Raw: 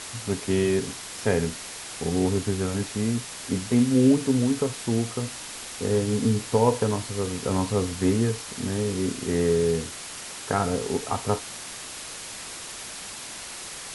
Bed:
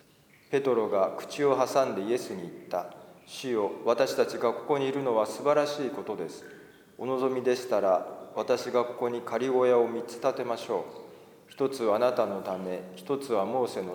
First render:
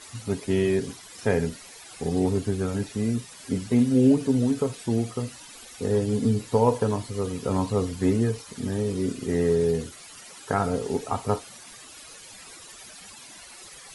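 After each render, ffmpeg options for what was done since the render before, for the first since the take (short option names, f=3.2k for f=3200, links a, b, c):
-af "afftdn=nr=13:nf=-38"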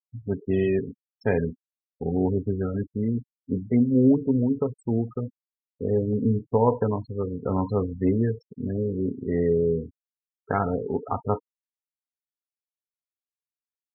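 -af "afftfilt=real='re*gte(hypot(re,im),0.0398)':imag='im*gte(hypot(re,im),0.0398)':win_size=1024:overlap=0.75"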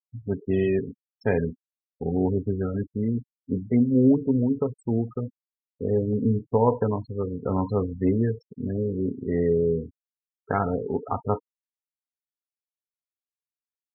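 -af anull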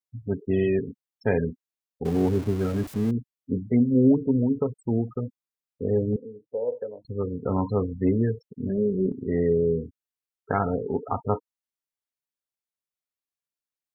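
-filter_complex "[0:a]asettb=1/sr,asplit=3[a][b][c];[a]atrim=end=2.054[d];[b]atrim=start=2.05:end=3.11,asetpts=PTS-STARTPTS,afade=t=in:d=0.004:c=qsin,afade=t=out:st=1.056:d=0.004:c=qsin,aeval=exprs='val(0)+0.5*0.0224*sgn(val(0))':c=same[e];[c]atrim=start=3.106[f];[d][e]acrossfade=d=0.004:c1=hsin:c2=qsin[g];[g][f]acrossfade=d=0.004:c1=qsin:c2=hsin,asettb=1/sr,asplit=3[h][i][j];[h]atrim=end=6.164[k];[i]atrim=start=6.16:end=7.05,asetpts=PTS-STARTPTS,afade=t=in:d=0.004:c=qsin,afade=t=out:st=0.886:d=0.004:c=qsin,asplit=3[l][m][n];[l]bandpass=f=530:t=q:w=8,volume=0dB[o];[m]bandpass=f=1.84k:t=q:w=8,volume=-6dB[p];[n]bandpass=f=2.48k:t=q:w=8,volume=-9dB[q];[o][p][q]amix=inputs=3:normalize=0[r];[j]atrim=start=7.046[s];[k][r]acrossfade=d=0.004:c1=hsin:c2=qsin[t];[t][s]acrossfade=d=0.004:c1=qsin:c2=hsin,asettb=1/sr,asplit=3[u][v][w];[u]atrim=end=8.694[x];[v]atrim=start=8.69:end=9.12,asetpts=PTS-STARTPTS,afade=t=in:d=0.004:c=qsin,afade=t=out:st=0.426:d=0.004:c=qsin,aecho=1:1:5.1:0.75,atrim=end_sample=18963[y];[w]atrim=start=9.116[z];[x][y]acrossfade=d=0.004:c1=hsin:c2=qsin[aa];[aa][z]acrossfade=d=0.004:c1=qsin:c2=hsin"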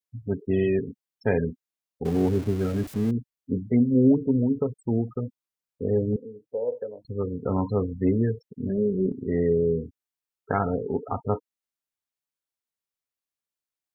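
-af "adynamicequalizer=threshold=0.00501:dfrequency=1000:dqfactor=1.9:tfrequency=1000:tqfactor=1.9:attack=5:release=100:ratio=0.375:range=2.5:mode=cutabove:tftype=bell"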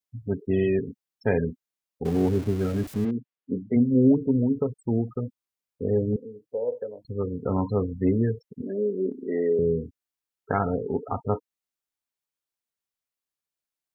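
-filter_complex "[0:a]asplit=3[a][b][c];[a]afade=t=out:st=3.04:d=0.02[d];[b]highpass=180,lowpass=3.1k,afade=t=in:st=3.04:d=0.02,afade=t=out:st=3.75:d=0.02[e];[c]afade=t=in:st=3.75:d=0.02[f];[d][e][f]amix=inputs=3:normalize=0,asettb=1/sr,asplit=3[g][h][i];[g]atrim=end=8.624[j];[h]atrim=start=8.62:end=9.59,asetpts=PTS-STARTPTS,afade=t=in:d=0.004:c=qsin,afade=t=out:st=0.966:d=0.004:c=qsin,highpass=f=250:w=0.5412,highpass=f=250:w=1.3066[k];[i]atrim=start=9.586[l];[j][k]acrossfade=d=0.004:c1=hsin:c2=qsin[m];[m][l]acrossfade=d=0.004:c1=qsin:c2=hsin"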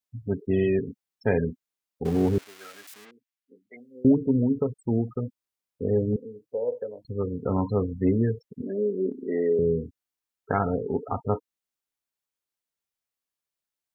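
-filter_complex "[0:a]asettb=1/sr,asplit=3[a][b][c];[a]atrim=end=2.384[d];[b]atrim=start=2.38:end=4.05,asetpts=PTS-STARTPTS,afade=t=in:d=0.004:c=qsin,afade=t=out:st=1.666:d=0.004:c=qsin,highpass=1.4k[e];[c]atrim=start=4.046[f];[d][e]acrossfade=d=0.004:c1=hsin:c2=qsin[g];[g][f]acrossfade=d=0.004:c1=qsin:c2=hsin"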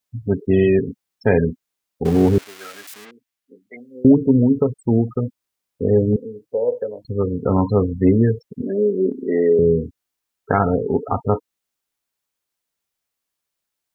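-af "volume=8dB,alimiter=limit=-3dB:level=0:latency=1"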